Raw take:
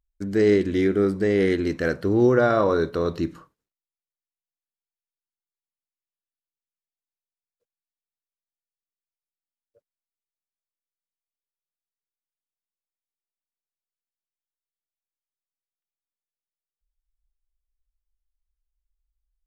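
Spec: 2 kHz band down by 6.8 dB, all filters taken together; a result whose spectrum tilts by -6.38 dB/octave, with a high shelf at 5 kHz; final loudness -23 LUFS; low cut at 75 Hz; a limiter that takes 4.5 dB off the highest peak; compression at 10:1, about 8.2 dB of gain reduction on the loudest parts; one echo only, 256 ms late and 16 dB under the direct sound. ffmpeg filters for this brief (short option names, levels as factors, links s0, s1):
-af "highpass=75,equalizer=f=2000:t=o:g=-8.5,highshelf=f=5000:g=-7,acompressor=threshold=0.0794:ratio=10,alimiter=limit=0.112:level=0:latency=1,aecho=1:1:256:0.158,volume=2"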